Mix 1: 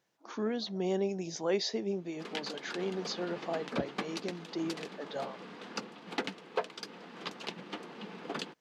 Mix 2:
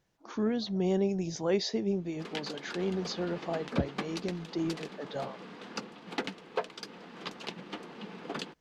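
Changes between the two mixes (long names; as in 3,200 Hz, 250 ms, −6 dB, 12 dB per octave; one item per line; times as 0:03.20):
speech: remove high-pass filter 260 Hz 6 dB per octave
master: add low-shelf EQ 94 Hz +9.5 dB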